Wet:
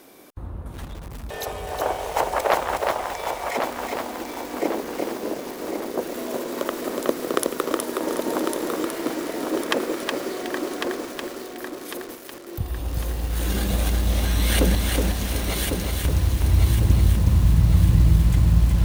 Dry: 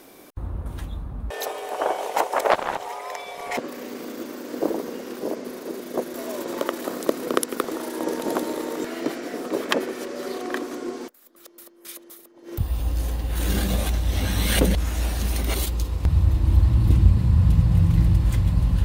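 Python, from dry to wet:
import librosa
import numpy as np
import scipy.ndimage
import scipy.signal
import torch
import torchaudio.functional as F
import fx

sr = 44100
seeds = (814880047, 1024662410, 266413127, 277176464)

p1 = fx.low_shelf(x, sr, hz=65.0, db=-5.5)
p2 = p1 + fx.echo_feedback(p1, sr, ms=1101, feedback_pct=44, wet_db=-6.0, dry=0)
p3 = fx.echo_crushed(p2, sr, ms=368, feedback_pct=35, bits=6, wet_db=-3.0)
y = p3 * 10.0 ** (-1.0 / 20.0)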